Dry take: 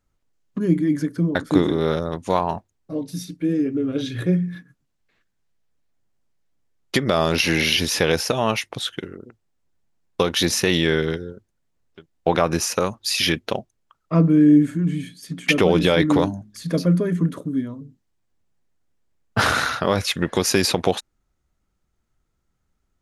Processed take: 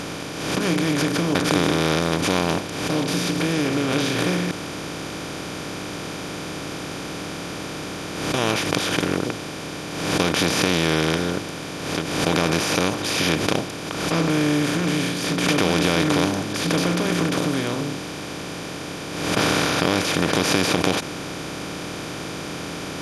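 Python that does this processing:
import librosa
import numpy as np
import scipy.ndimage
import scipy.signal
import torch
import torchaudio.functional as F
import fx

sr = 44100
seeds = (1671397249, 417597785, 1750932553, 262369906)

y = fx.edit(x, sr, fx.room_tone_fill(start_s=4.51, length_s=3.83), tone=tone)
y = fx.bin_compress(y, sr, power=0.2)
y = fx.pre_swell(y, sr, db_per_s=46.0)
y = F.gain(torch.from_numpy(y), -11.0).numpy()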